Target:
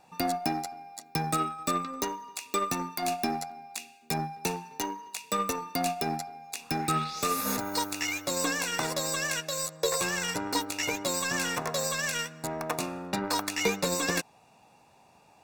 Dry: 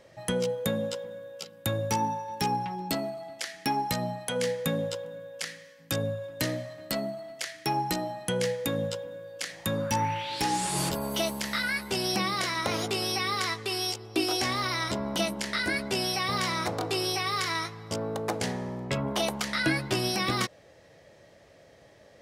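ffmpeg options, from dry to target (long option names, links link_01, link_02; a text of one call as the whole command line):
ffmpeg -i in.wav -af "asetrate=63504,aresample=44100,aeval=exprs='0.2*(cos(1*acos(clip(val(0)/0.2,-1,1)))-cos(1*PI/2))+0.01*(cos(5*acos(clip(val(0)/0.2,-1,1)))-cos(5*PI/2))+0.00158*(cos(6*acos(clip(val(0)/0.2,-1,1)))-cos(6*PI/2))+0.0178*(cos(7*acos(clip(val(0)/0.2,-1,1)))-cos(7*PI/2))':channel_layout=same,asuperstop=centerf=3100:order=12:qfactor=7.9" out.wav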